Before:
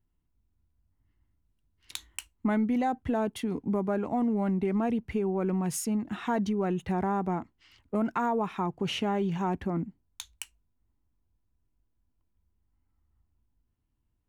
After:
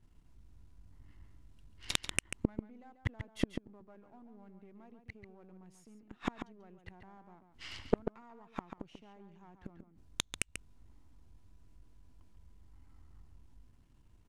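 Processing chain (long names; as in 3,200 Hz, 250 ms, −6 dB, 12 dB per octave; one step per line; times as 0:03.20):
gain on one half-wave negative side −7 dB
low-pass filter 9,100 Hz
gate with flip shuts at −28 dBFS, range −41 dB
slap from a distant wall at 24 metres, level −8 dB
level +14.5 dB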